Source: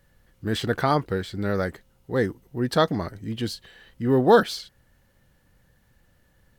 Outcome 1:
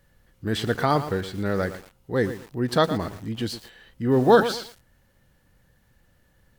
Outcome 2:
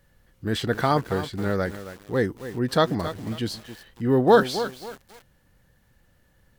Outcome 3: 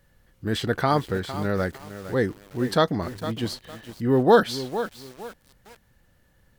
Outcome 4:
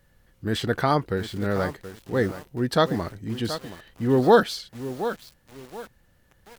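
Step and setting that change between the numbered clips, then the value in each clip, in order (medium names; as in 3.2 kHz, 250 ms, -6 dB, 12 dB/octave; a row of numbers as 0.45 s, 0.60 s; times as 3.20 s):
bit-crushed delay, time: 115 ms, 272 ms, 457 ms, 726 ms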